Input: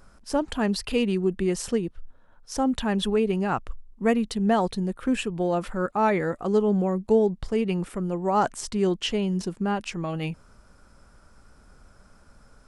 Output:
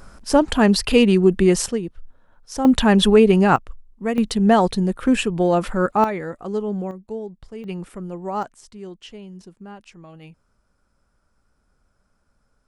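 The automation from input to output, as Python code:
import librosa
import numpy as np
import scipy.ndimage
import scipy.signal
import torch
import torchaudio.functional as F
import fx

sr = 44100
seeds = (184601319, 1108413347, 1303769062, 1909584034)

y = fx.gain(x, sr, db=fx.steps((0.0, 9.5), (1.66, 1.0), (2.65, 10.5), (3.56, -1.5), (4.18, 7.0), (6.04, -3.0), (6.91, -10.5), (7.64, -3.5), (8.43, -13.0)))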